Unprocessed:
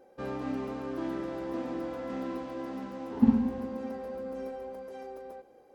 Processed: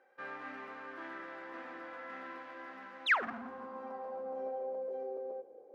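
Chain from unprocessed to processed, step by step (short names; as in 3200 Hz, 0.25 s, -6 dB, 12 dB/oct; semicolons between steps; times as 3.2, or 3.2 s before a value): painted sound fall, 3.06–3.26, 210–4200 Hz -25 dBFS; overloaded stage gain 25.5 dB; band-pass sweep 1700 Hz -> 490 Hz, 3.12–5.03; gain +5 dB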